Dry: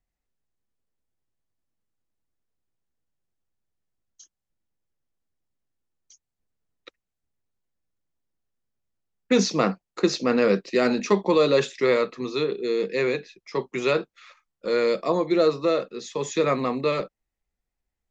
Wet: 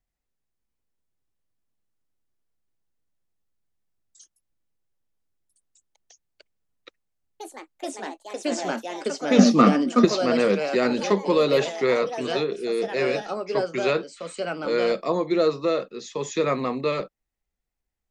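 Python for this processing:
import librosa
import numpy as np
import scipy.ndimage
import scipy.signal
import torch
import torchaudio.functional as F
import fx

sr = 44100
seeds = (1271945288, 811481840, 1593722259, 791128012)

y = fx.echo_pitch(x, sr, ms=622, semitones=3, count=3, db_per_echo=-6.0)
y = fx.small_body(y, sr, hz=(240.0, 1200.0), ring_ms=45, db=15, at=(9.38, 10.05))
y = y * 10.0 ** (-1.0 / 20.0)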